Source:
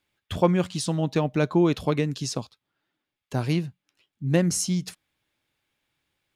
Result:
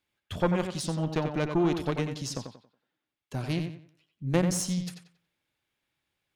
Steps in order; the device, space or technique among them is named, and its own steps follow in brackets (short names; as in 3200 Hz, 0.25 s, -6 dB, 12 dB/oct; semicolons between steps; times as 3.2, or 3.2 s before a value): rockabilly slapback (tube stage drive 13 dB, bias 0.8; tape echo 91 ms, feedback 33%, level -6 dB, low-pass 4200 Hz)